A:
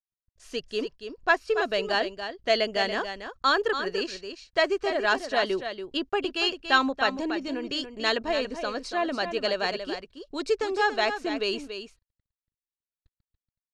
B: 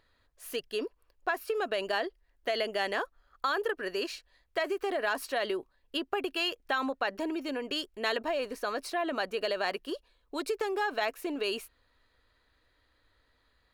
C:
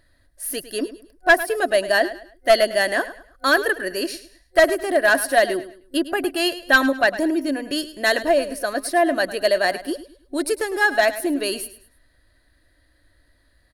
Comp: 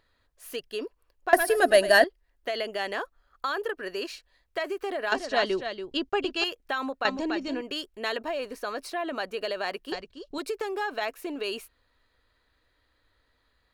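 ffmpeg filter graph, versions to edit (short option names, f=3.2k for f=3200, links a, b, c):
-filter_complex "[0:a]asplit=3[a][b][c];[1:a]asplit=5[d][e][f][g][h];[d]atrim=end=1.332[i];[2:a]atrim=start=1.328:end=2.042[j];[e]atrim=start=2.038:end=5.122[k];[a]atrim=start=5.118:end=6.442[l];[f]atrim=start=6.438:end=7.052[m];[b]atrim=start=7.048:end=7.612[n];[g]atrim=start=7.608:end=9.922[o];[c]atrim=start=9.918:end=10.382[p];[h]atrim=start=10.378[q];[i][j]acrossfade=d=0.004:c1=hsin:c2=hsin[r];[r][k]acrossfade=d=0.004:c1=hsin:c2=hsin[s];[s][l]acrossfade=d=0.004:c1=hsin:c2=hsin[t];[t][m]acrossfade=d=0.004:c1=hsin:c2=hsin[u];[u][n]acrossfade=d=0.004:c1=hsin:c2=hsin[v];[v][o]acrossfade=d=0.004:c1=hsin:c2=hsin[w];[w][p]acrossfade=d=0.004:c1=hsin:c2=hsin[x];[x][q]acrossfade=d=0.004:c1=hsin:c2=hsin"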